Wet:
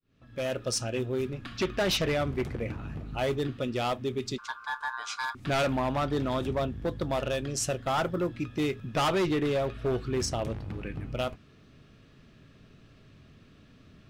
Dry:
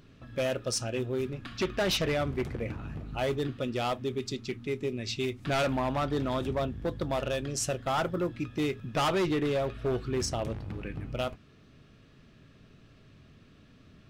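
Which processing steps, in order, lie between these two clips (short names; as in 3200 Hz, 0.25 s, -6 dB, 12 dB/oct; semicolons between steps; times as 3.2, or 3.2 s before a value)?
opening faded in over 0.63 s; 4.38–5.35 ring modulator 1300 Hz; gain +1 dB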